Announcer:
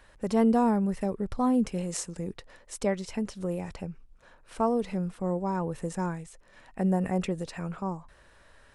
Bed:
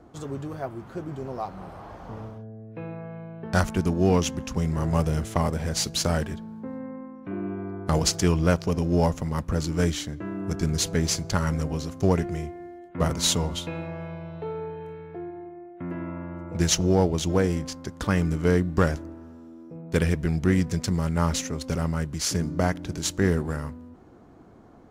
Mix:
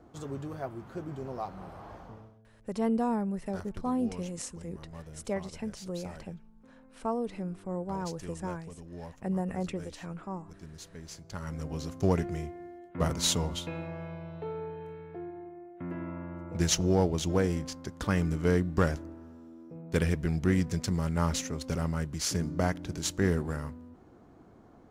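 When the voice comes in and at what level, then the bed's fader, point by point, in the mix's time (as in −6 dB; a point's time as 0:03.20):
2.45 s, −5.5 dB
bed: 0:01.97 −4.5 dB
0:02.47 −22 dB
0:11.03 −22 dB
0:11.87 −4.5 dB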